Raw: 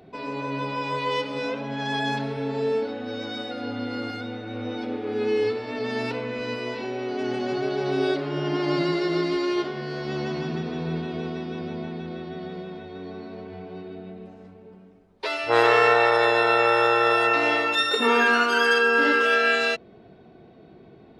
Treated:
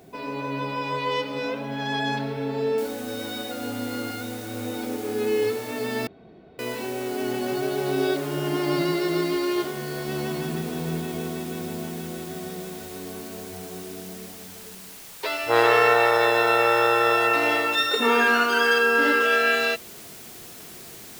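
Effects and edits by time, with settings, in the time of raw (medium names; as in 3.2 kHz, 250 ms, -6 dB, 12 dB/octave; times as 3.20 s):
2.78 s: noise floor step -63 dB -43 dB
6.07–6.59 s: room tone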